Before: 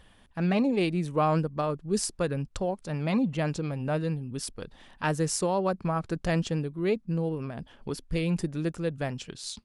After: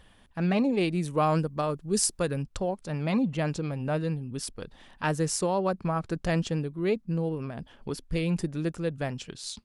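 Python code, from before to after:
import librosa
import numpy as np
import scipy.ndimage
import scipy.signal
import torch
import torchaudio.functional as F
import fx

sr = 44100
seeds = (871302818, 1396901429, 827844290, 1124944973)

y = fx.high_shelf(x, sr, hz=5900.0, db=9.0, at=(0.93, 2.43))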